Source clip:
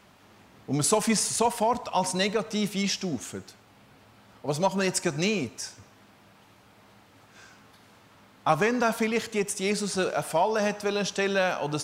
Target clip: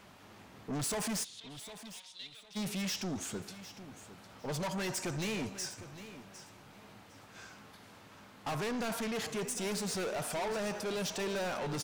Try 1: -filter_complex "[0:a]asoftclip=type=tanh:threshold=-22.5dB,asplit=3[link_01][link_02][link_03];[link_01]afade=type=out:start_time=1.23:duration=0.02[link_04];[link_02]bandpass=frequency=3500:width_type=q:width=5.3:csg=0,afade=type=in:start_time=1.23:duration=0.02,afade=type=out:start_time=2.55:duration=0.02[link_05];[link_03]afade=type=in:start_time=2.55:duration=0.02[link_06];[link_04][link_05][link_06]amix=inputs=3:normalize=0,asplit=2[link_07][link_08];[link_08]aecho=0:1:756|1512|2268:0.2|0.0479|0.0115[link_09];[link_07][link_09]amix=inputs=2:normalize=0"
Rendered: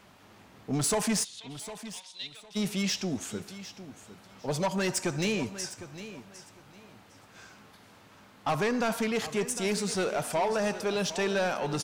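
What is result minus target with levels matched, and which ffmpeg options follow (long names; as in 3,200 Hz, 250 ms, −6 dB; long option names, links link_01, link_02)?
soft clipping: distortion −7 dB
-filter_complex "[0:a]asoftclip=type=tanh:threshold=-33.5dB,asplit=3[link_01][link_02][link_03];[link_01]afade=type=out:start_time=1.23:duration=0.02[link_04];[link_02]bandpass=frequency=3500:width_type=q:width=5.3:csg=0,afade=type=in:start_time=1.23:duration=0.02,afade=type=out:start_time=2.55:duration=0.02[link_05];[link_03]afade=type=in:start_time=2.55:duration=0.02[link_06];[link_04][link_05][link_06]amix=inputs=3:normalize=0,asplit=2[link_07][link_08];[link_08]aecho=0:1:756|1512|2268:0.2|0.0479|0.0115[link_09];[link_07][link_09]amix=inputs=2:normalize=0"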